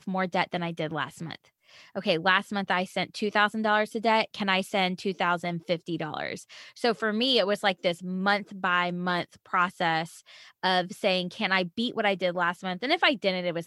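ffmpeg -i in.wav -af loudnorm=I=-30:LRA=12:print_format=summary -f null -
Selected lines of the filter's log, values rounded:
Input Integrated:    -26.9 LUFS
Input True Peak:      -7.6 dBTP
Input LRA:             1.9 LU
Input Threshold:     -37.2 LUFS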